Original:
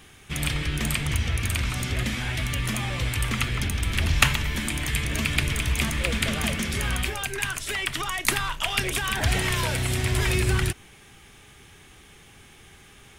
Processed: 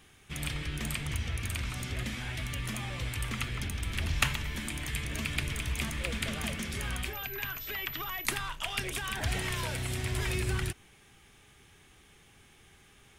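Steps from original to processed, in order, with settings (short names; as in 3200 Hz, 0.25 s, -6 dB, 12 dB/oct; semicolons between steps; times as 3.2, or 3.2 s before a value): 7.13–8.26 pulse-width modulation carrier 12000 Hz; gain -8.5 dB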